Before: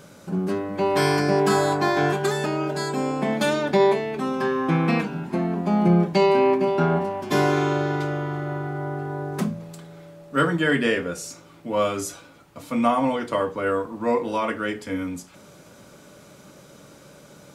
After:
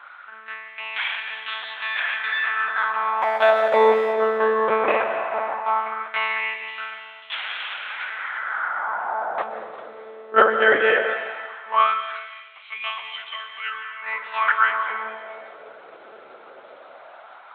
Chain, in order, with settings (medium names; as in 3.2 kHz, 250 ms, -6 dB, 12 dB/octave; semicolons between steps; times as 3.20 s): peaking EQ 1.3 kHz +14 dB 2.6 oct; monotone LPC vocoder at 8 kHz 220 Hz; 3.22–4.13 s: hysteresis with a dead band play -37 dBFS; plate-style reverb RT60 2 s, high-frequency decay 0.9×, pre-delay 110 ms, DRR 6.5 dB; LFO high-pass sine 0.17 Hz 440–3000 Hz; trim -6 dB